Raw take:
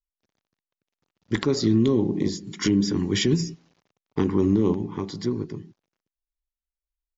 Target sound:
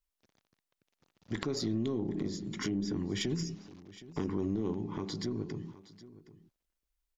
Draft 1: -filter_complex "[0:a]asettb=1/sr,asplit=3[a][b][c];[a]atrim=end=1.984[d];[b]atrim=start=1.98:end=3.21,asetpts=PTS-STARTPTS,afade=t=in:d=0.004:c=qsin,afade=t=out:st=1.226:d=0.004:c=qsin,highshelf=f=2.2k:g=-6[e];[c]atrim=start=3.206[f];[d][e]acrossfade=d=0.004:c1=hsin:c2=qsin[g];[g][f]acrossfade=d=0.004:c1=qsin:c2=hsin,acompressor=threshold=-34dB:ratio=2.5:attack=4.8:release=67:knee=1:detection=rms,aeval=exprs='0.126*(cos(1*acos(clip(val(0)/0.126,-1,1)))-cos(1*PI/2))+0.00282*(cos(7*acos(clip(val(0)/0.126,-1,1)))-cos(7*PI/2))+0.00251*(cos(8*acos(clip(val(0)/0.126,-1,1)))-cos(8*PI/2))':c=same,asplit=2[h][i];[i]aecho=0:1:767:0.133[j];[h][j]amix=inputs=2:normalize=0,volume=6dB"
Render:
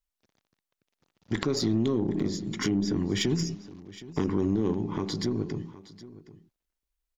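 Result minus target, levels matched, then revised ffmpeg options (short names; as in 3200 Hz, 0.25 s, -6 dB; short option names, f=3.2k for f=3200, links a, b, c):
compressor: peak gain reduction -6 dB
-filter_complex "[0:a]asettb=1/sr,asplit=3[a][b][c];[a]atrim=end=1.984[d];[b]atrim=start=1.98:end=3.21,asetpts=PTS-STARTPTS,afade=t=in:d=0.004:c=qsin,afade=t=out:st=1.226:d=0.004:c=qsin,highshelf=f=2.2k:g=-6[e];[c]atrim=start=3.206[f];[d][e]acrossfade=d=0.004:c1=hsin:c2=qsin[g];[g][f]acrossfade=d=0.004:c1=qsin:c2=hsin,acompressor=threshold=-44dB:ratio=2.5:attack=4.8:release=67:knee=1:detection=rms,aeval=exprs='0.126*(cos(1*acos(clip(val(0)/0.126,-1,1)))-cos(1*PI/2))+0.00282*(cos(7*acos(clip(val(0)/0.126,-1,1)))-cos(7*PI/2))+0.00251*(cos(8*acos(clip(val(0)/0.126,-1,1)))-cos(8*PI/2))':c=same,asplit=2[h][i];[i]aecho=0:1:767:0.133[j];[h][j]amix=inputs=2:normalize=0,volume=6dB"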